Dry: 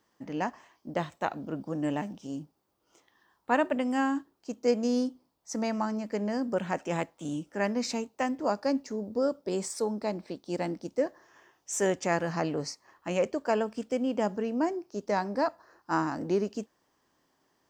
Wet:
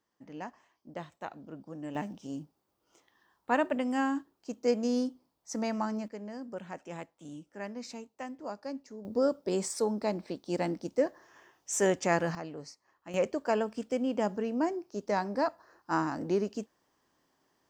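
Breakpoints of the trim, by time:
-10 dB
from 1.95 s -2 dB
from 6.08 s -11 dB
from 9.05 s +0.5 dB
from 12.35 s -11 dB
from 13.14 s -1.5 dB

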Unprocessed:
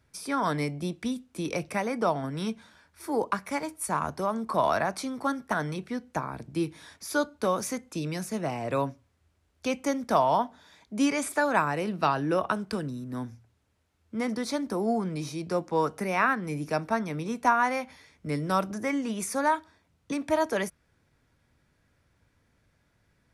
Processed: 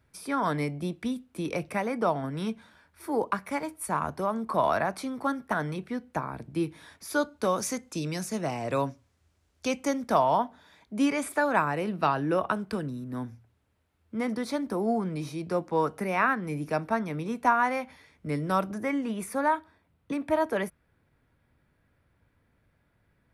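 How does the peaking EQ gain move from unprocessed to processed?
peaking EQ 6.2 kHz 1.2 oct
6.90 s -7 dB
7.69 s +3.5 dB
9.67 s +3.5 dB
10.38 s -7 dB
18.64 s -7 dB
19.19 s -13.5 dB

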